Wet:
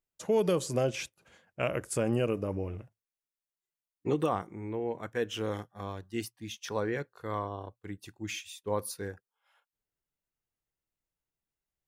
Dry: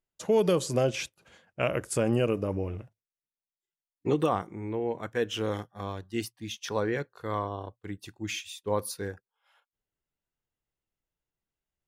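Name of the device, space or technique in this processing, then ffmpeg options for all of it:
exciter from parts: -filter_complex "[0:a]asplit=2[s0][s1];[s1]highpass=f=2100:w=0.5412,highpass=f=2100:w=1.3066,asoftclip=type=tanh:threshold=0.0299,highpass=3200,volume=0.237[s2];[s0][s2]amix=inputs=2:normalize=0,volume=0.708"

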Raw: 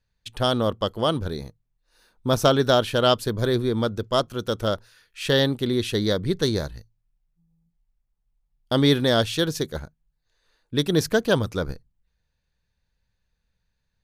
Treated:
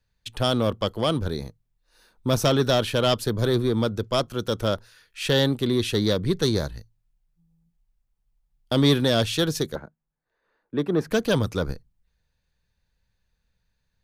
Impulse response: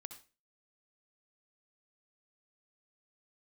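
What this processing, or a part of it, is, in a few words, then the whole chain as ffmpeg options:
one-band saturation: -filter_complex "[0:a]acrossover=split=230|3400[s0][s1][s2];[s1]asoftclip=type=tanh:threshold=0.119[s3];[s0][s3][s2]amix=inputs=3:normalize=0,asettb=1/sr,asplit=3[s4][s5][s6];[s4]atrim=end=9.754[s7];[s5]atrim=start=9.75:end=11.11,asetpts=PTS-STARTPTS,afade=t=in:d=0.004:c=qsin,afade=t=out:st=1.356:d=0.004:c=qsin,acrossover=split=160 2000:gain=0.126 1 0.0891[s8][s9][s10];[s8][s9][s10]amix=inputs=3:normalize=0[s11];[s6]atrim=start=11.106[s12];[s7][s11]acrossfade=d=0.004:c1=hsin:c2=qsin[s13];[s13][s12]acrossfade=d=0.004:c1=qsin:c2=hsin,volume=1.19"

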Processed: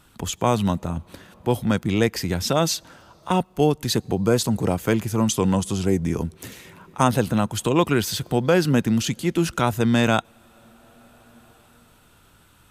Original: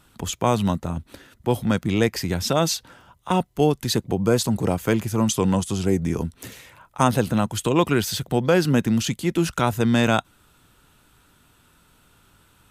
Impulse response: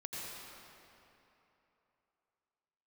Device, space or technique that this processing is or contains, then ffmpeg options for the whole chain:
ducked reverb: -filter_complex "[0:a]asplit=3[s0][s1][s2];[1:a]atrim=start_sample=2205[s3];[s1][s3]afir=irnorm=-1:irlink=0[s4];[s2]apad=whole_len=560201[s5];[s4][s5]sidechaincompress=threshold=0.0158:ratio=20:attack=12:release=807,volume=0.316[s6];[s0][s6]amix=inputs=2:normalize=0"

